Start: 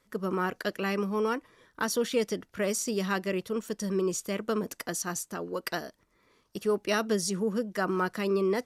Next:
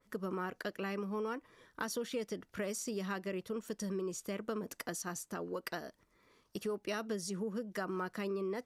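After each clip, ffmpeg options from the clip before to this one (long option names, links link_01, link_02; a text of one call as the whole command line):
ffmpeg -i in.wav -af "acompressor=threshold=-35dB:ratio=3,adynamicequalizer=threshold=0.00282:dfrequency=2600:dqfactor=0.7:tfrequency=2600:tqfactor=0.7:attack=5:release=100:ratio=0.375:range=2:mode=cutabove:tftype=highshelf,volume=-2dB" out.wav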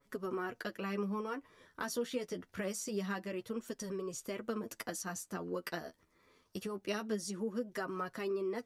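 ffmpeg -i in.wav -af "flanger=delay=7:depth=5.5:regen=22:speed=0.25:shape=triangular,volume=3.5dB" out.wav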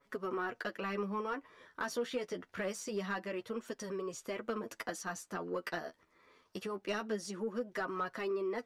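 ffmpeg -i in.wav -filter_complex "[0:a]asplit=2[link_01][link_02];[link_02]highpass=frequency=720:poles=1,volume=11dB,asoftclip=type=tanh:threshold=-24.5dB[link_03];[link_01][link_03]amix=inputs=2:normalize=0,lowpass=frequency=2300:poles=1,volume=-6dB" out.wav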